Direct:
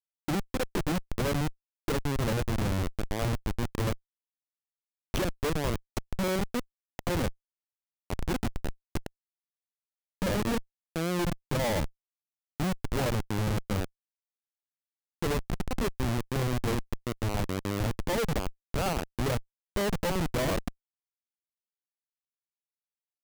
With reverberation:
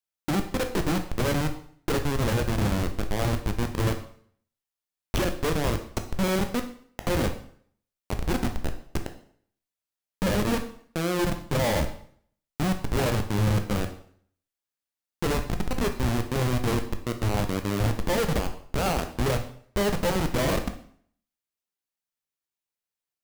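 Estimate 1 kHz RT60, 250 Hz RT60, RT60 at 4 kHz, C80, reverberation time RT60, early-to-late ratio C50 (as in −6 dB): 0.55 s, 0.55 s, 0.50 s, 14.0 dB, 0.55 s, 10.0 dB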